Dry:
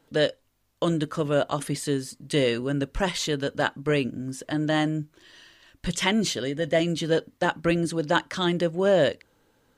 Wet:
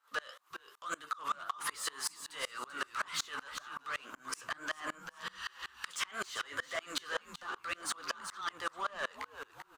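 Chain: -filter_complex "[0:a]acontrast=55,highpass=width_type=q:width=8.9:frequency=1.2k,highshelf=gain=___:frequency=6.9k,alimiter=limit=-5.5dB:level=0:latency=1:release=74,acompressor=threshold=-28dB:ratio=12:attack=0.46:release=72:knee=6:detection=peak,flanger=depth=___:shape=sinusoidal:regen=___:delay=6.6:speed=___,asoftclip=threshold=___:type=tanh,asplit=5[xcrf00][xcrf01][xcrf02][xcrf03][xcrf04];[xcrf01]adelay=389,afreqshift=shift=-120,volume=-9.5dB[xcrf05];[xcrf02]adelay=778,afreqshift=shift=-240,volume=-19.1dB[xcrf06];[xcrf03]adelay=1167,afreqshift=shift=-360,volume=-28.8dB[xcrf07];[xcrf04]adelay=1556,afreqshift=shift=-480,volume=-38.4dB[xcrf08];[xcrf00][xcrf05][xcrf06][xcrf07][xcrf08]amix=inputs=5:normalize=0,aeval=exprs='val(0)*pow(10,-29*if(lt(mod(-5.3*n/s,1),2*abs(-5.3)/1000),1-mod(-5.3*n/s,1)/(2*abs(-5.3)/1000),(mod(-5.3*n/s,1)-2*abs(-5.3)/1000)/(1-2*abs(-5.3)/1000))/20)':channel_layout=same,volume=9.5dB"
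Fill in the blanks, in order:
3.5, 8.4, 48, 1.9, -34dB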